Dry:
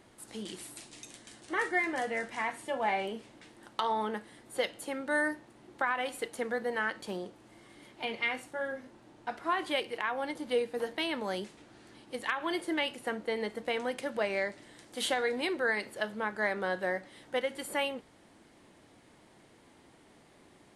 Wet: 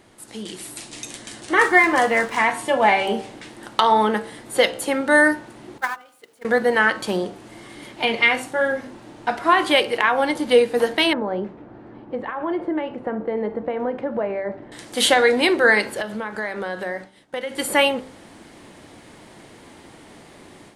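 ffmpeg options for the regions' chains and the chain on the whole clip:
-filter_complex "[0:a]asettb=1/sr,asplit=3[a][b][c];[a]atrim=end=1.614[d];[b]atrim=start=1.61:end=2.38,asetpts=PTS-STARTPTS,afade=t=in:d=0.004:c=qsin,afade=t=out:st=0.766:d=0.004:c=qsin,equalizer=f=1.1k:w=3.9:g=10.5,aeval=exprs='sgn(val(0))*max(abs(val(0))-0.0015,0)':c=same[e];[c]atrim=start=2.376[f];[d][e]acrossfade=d=0.004:c1=hsin:c2=qsin[g];[g][f]acrossfade=d=0.004:c1=qsin:c2=hsin,asettb=1/sr,asplit=3[h][i][j];[h]atrim=end=5.784[k];[i]atrim=start=5.78:end=6.45,asetpts=PTS-STARTPTS,afade=t=in:d=0.004:c=qsin,afade=t=out:st=0.666:d=0.004:c=qsin,aeval=exprs='val(0)+0.5*0.0237*sgn(val(0))':c=same,highpass=f=150:p=1,agate=range=-37dB:threshold=-26dB:ratio=16:release=100:detection=peak[l];[j]atrim=start=6.446[m];[k][l]acrossfade=d=0.004:c1=hsin:c2=qsin[n];[n][m]acrossfade=d=0.004:c1=qsin:c2=hsin,asettb=1/sr,asplit=3[o][p][q];[o]atrim=end=11.134[r];[p]atrim=start=11.13:end=14.72,asetpts=PTS-STARTPTS,afade=t=in:d=0.004:c=qsin,afade=t=out:st=3.586:d=0.004:c=qsin,acompressor=threshold=-35dB:ratio=2.5:attack=3.2:release=140:knee=1:detection=peak,lowpass=1k[s];[q]atrim=start=14.716[t];[r][s]acrossfade=d=0.004:c1=hsin:c2=qsin[u];[u][t]acrossfade=d=0.004:c1=qsin:c2=hsin,asettb=1/sr,asplit=3[v][w][x];[v]atrim=end=16.014[y];[w]atrim=start=16.01:end=17.58,asetpts=PTS-STARTPTS,afade=t=in:d=0.004:c=qsin,afade=t=out:st=1.566:d=0.004:c=qsin,agate=range=-33dB:threshold=-44dB:ratio=3:release=100:detection=peak,acompressor=threshold=-40dB:ratio=4:attack=3.2:release=140:knee=1:detection=peak[z];[x]atrim=start=17.576[aa];[y][z]acrossfade=d=0.004:c1=hsin:c2=qsin[ab];[ab][aa]acrossfade=d=0.004:c1=qsin:c2=hsin,bandreject=f=64.54:t=h:w=4,bandreject=f=129.08:t=h:w=4,bandreject=f=193.62:t=h:w=4,bandreject=f=258.16:t=h:w=4,bandreject=f=322.7:t=h:w=4,bandreject=f=387.24:t=h:w=4,bandreject=f=451.78:t=h:w=4,bandreject=f=516.32:t=h:w=4,bandreject=f=580.86:t=h:w=4,bandreject=f=645.4:t=h:w=4,bandreject=f=709.94:t=h:w=4,bandreject=f=774.48:t=h:w=4,bandreject=f=839.02:t=h:w=4,bandreject=f=903.56:t=h:w=4,bandreject=f=968.1:t=h:w=4,bandreject=f=1.03264k:t=h:w=4,bandreject=f=1.09718k:t=h:w=4,bandreject=f=1.16172k:t=h:w=4,bandreject=f=1.22626k:t=h:w=4,bandreject=f=1.2908k:t=h:w=4,bandreject=f=1.35534k:t=h:w=4,bandreject=f=1.41988k:t=h:w=4,bandreject=f=1.48442k:t=h:w=4,bandreject=f=1.54896k:t=h:w=4,bandreject=f=1.6135k:t=h:w=4,dynaudnorm=f=530:g=3:m=8dB,volume=7dB"

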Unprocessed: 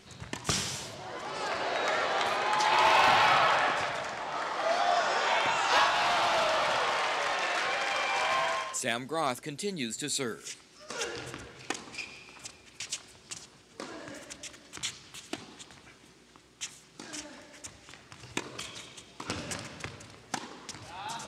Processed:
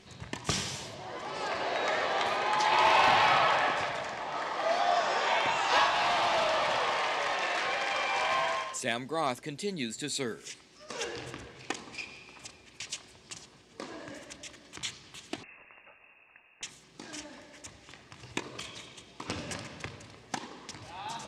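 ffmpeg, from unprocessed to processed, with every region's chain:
-filter_complex "[0:a]asettb=1/sr,asplit=3[a][b][c];[a]atrim=end=15.434[d];[b]atrim=start=15.43:end=16.63,asetpts=PTS-STARTPTS,afade=t=in:d=0.004:c=qsin,afade=t=out:st=1.196:d=0.004:c=qsin,highpass=84,lowpass=f=2.5k:t=q:w=0.5098,lowpass=f=2.5k:t=q:w=0.6013,lowpass=f=2.5k:t=q:w=0.9,lowpass=f=2.5k:t=q:w=2.563,afreqshift=-2900[e];[c]atrim=start=16.626[f];[d][e]acrossfade=d=0.004:c1=hsin:c2=qsin[g];[g][f]acrossfade=d=0.004:c1=qsin:c2=hsin,highshelf=f=10k:g=-11.5,bandreject=f=1.4k:w=9.1"

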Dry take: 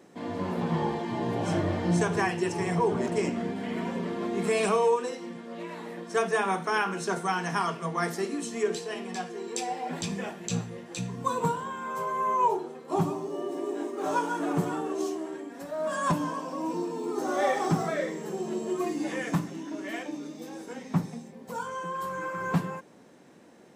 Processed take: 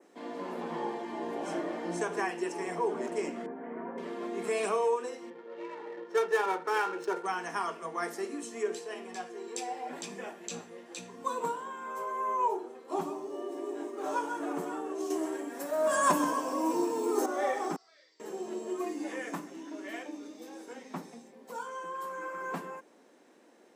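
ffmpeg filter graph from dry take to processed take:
-filter_complex "[0:a]asettb=1/sr,asplit=3[a][b][c];[a]atrim=end=3.464[d];[b]atrim=start=3.46:end=3.98,asetpts=PTS-STARTPTS,afade=t=in:d=0.004:c=qsin,afade=t=out:st=0.516:d=0.004:c=qsin,lowpass=f=1.6k:w=0.5412,lowpass=f=1.6k:w=1.3066,bandreject=f=50:t=h:w=6,bandreject=f=100:t=h:w=6,bandreject=f=150:t=h:w=6,bandreject=f=200:t=h:w=6,bandreject=f=250:t=h:w=6,bandreject=f=300:t=h:w=6,bandreject=f=350:t=h:w=6[e];[c]atrim=start=3.976[f];[d][e]acrossfade=d=0.004:c1=hsin:c2=qsin[g];[g][f]acrossfade=d=0.004:c1=qsin:c2=hsin,asettb=1/sr,asplit=3[h][i][j];[h]atrim=end=5.304[k];[i]atrim=start=5.3:end=7.26,asetpts=PTS-STARTPTS,afade=t=in:d=0.004:c=qsin,afade=t=out:st=1.956:d=0.004:c=qsin,aecho=1:1:2.2:0.72,atrim=end_sample=86436,adynamicsmooth=sensitivity=7.5:basefreq=1.3k[l];[j]atrim=start=7.256[m];[k][l]acrossfade=d=0.004:c1=hsin:c2=qsin[n];[n][m]acrossfade=d=0.004:c1=qsin:c2=hsin,asettb=1/sr,asplit=3[o][p][q];[o]atrim=end=15.104[r];[p]atrim=start=15.1:end=17.26,asetpts=PTS-STARTPTS,afade=t=in:d=0.004:c=qsin,afade=t=out:st=2.156:d=0.004:c=qsin,highshelf=f=7.3k:g=10.5,acontrast=81,aecho=1:1:130:0.266,atrim=end_sample=95256[s];[q]atrim=start=17.256[t];[r][s]acrossfade=d=0.004:c1=hsin:c2=qsin[u];[u][t]acrossfade=d=0.004:c1=qsin:c2=hsin,asettb=1/sr,asplit=3[v][w][x];[v]atrim=end=17.764[y];[w]atrim=start=17.76:end=18.2,asetpts=PTS-STARTPTS,afade=t=in:d=0.004:c=qsin,afade=t=out:st=0.436:d=0.004:c=qsin,bandpass=f=4.7k:t=q:w=10,aemphasis=mode=reproduction:type=50fm,acontrast=31[z];[x]atrim=start=18.196[aa];[y][z]acrossfade=d=0.004:c1=hsin:c2=qsin[ab];[ab][aa]acrossfade=d=0.004:c1=qsin:c2=hsin,highpass=f=260:w=0.5412,highpass=f=260:w=1.3066,adynamicequalizer=threshold=0.00224:dfrequency=3900:dqfactor=1.4:tfrequency=3900:tqfactor=1.4:attack=5:release=100:ratio=0.375:range=2.5:mode=cutabove:tftype=bell,volume=-4.5dB"

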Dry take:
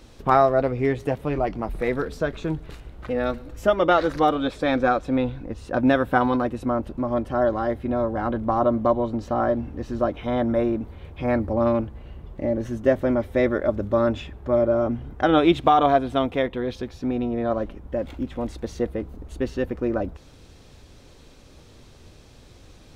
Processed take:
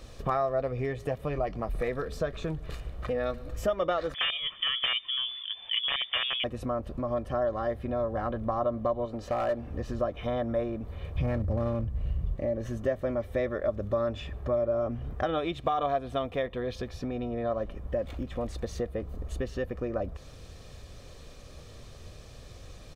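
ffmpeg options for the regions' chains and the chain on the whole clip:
-filter_complex "[0:a]asettb=1/sr,asplit=3[a][b][c];[a]atrim=end=4.144[d];[b]atrim=start=4.14:end=6.44,asetpts=PTS-STARTPTS,afade=t=in:d=0.004:c=qsin,afade=t=out:st=2.296:d=0.004:c=qsin,highpass=120,aeval=exprs='(mod(3.55*val(0)+1,2)-1)/3.55':c=same,lowpass=f=3.1k:t=q:w=0.5098,lowpass=f=3.1k:t=q:w=0.6013,lowpass=f=3.1k:t=q:w=0.9,lowpass=f=3.1k:t=q:w=2.563,afreqshift=-3600[e];[c]atrim=start=6.436[f];[d][e]acrossfade=d=0.004:c1=hsin:c2=qsin[g];[g][f]acrossfade=d=0.004:c1=qsin:c2=hsin,asettb=1/sr,asplit=3[h][i][j];[h]atrim=end=9.054[k];[i]atrim=start=9.05:end=9.71,asetpts=PTS-STARTPTS,afade=t=in:d=0.004:c=qsin,afade=t=out:st=0.656:d=0.004:c=qsin,bass=f=250:g=-7,treble=f=4k:g=-1,bandreject=f=1.1k:w=24,volume=19dB,asoftclip=hard,volume=-19dB[l];[j]atrim=start=9.706[m];[k][l]acrossfade=d=0.004:c1=hsin:c2=qsin[n];[n][m]acrossfade=d=0.004:c1=qsin:c2=hsin,asettb=1/sr,asplit=3[o][p][q];[o]atrim=end=11.154[r];[p]atrim=start=11.15:end=12.36,asetpts=PTS-STARTPTS,afade=t=in:d=0.004:c=qsin,afade=t=out:st=1.206:d=0.004:c=qsin,bass=f=250:g=12,treble=f=4k:g=4,aeval=exprs='clip(val(0),-1,0.15)':c=same[s];[q]atrim=start=12.356[t];[r][s]acrossfade=d=0.004:c1=hsin:c2=qsin[u];[u][t]acrossfade=d=0.004:c1=qsin:c2=hsin,acompressor=threshold=-30dB:ratio=3,aecho=1:1:1.7:0.44"

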